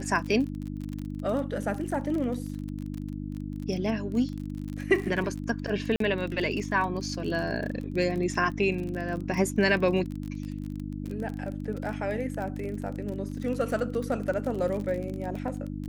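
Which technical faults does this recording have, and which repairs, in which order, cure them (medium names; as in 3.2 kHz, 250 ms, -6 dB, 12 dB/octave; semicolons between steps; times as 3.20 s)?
crackle 31 per s -33 dBFS
hum 50 Hz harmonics 6 -35 dBFS
5.96–6.00 s: dropout 43 ms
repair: de-click; de-hum 50 Hz, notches 6; interpolate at 5.96 s, 43 ms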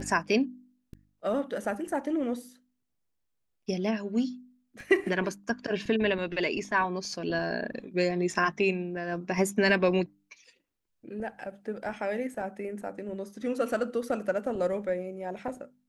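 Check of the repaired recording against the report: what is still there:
nothing left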